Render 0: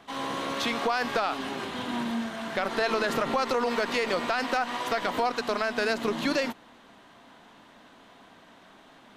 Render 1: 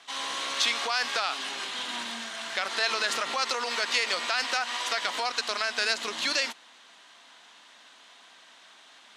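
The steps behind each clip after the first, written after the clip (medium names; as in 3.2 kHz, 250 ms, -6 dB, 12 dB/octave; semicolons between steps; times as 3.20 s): frequency weighting ITU-R 468; trim -3 dB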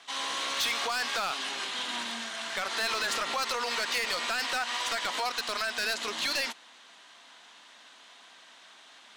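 hard clipper -25 dBFS, distortion -8 dB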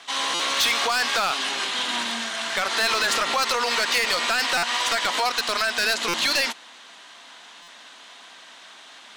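buffer glitch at 0.34/4.57/6.08/7.62 s, samples 256, times 9; trim +8 dB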